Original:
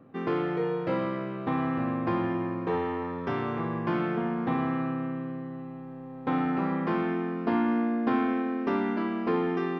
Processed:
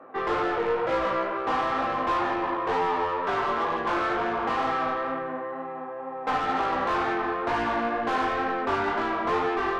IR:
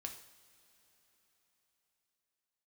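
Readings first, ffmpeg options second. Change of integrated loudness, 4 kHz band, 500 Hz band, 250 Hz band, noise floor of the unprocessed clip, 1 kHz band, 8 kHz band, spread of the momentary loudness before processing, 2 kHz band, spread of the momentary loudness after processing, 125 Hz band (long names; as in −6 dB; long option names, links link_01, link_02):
+2.5 dB, +9.5 dB, +3.0 dB, −6.0 dB, −41 dBFS, +8.5 dB, can't be measured, 7 LU, +7.5 dB, 5 LU, −9.0 dB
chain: -filter_complex "[0:a]acrossover=split=410 2000:gain=0.126 1 0.224[link_01][link_02][link_03];[link_01][link_02][link_03]amix=inputs=3:normalize=0,asplit=2[link_04][link_05];[link_05]highpass=frequency=720:poles=1,volume=26dB,asoftclip=type=tanh:threshold=-16dB[link_06];[link_04][link_06]amix=inputs=2:normalize=0,lowpass=frequency=2100:poles=1,volume=-6dB,flanger=delay=17.5:depth=3.7:speed=2.1,volume=1.5dB"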